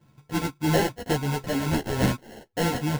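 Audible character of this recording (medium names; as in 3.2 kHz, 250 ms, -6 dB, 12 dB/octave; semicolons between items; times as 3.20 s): a buzz of ramps at a fixed pitch in blocks of 8 samples; tremolo triangle 3 Hz, depth 50%; aliases and images of a low sample rate 1.2 kHz, jitter 0%; a shimmering, thickened sound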